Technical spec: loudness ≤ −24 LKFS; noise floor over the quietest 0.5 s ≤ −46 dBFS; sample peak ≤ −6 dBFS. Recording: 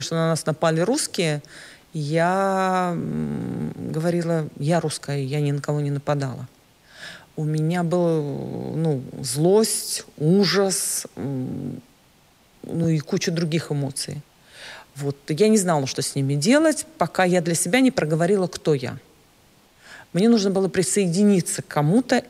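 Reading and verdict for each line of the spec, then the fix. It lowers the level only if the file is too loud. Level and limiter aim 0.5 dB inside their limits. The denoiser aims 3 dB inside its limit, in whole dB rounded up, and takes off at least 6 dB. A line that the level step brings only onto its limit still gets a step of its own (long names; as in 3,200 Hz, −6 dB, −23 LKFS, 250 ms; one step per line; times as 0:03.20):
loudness −22.0 LKFS: out of spec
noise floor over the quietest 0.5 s −56 dBFS: in spec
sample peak −5.0 dBFS: out of spec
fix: level −2.5 dB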